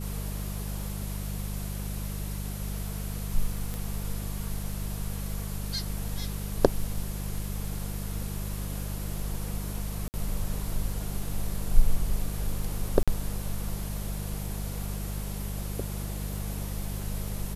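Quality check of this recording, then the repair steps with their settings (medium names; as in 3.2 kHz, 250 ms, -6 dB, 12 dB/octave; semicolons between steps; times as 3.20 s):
crackle 22 per s -38 dBFS
hum 50 Hz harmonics 4 -34 dBFS
3.74 s: pop
10.08–10.14 s: dropout 59 ms
13.03–13.08 s: dropout 46 ms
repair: de-click; de-hum 50 Hz, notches 4; interpolate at 10.08 s, 59 ms; interpolate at 13.03 s, 46 ms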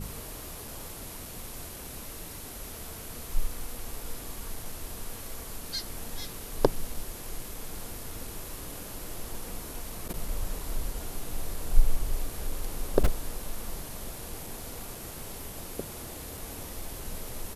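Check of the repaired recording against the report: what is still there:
nothing left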